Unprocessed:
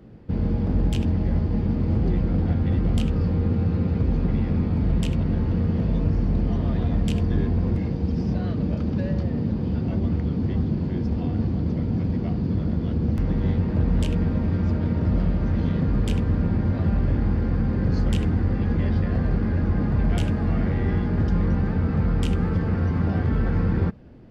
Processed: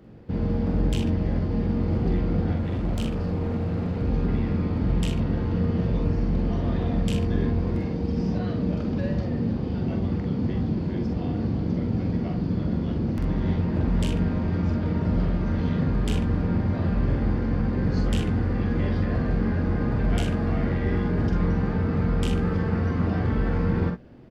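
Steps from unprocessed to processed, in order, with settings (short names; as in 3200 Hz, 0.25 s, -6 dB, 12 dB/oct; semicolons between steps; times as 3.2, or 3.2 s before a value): low shelf 180 Hz -5.5 dB; 2.57–4.02 overloaded stage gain 25 dB; early reflections 45 ms -5 dB, 62 ms -11 dB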